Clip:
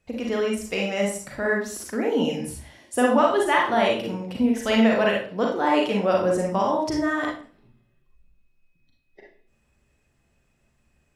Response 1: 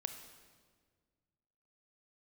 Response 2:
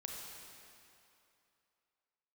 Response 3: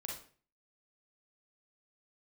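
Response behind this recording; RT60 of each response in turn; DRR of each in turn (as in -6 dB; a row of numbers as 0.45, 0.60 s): 3; 1.7, 2.7, 0.45 s; 7.0, -0.5, -1.5 dB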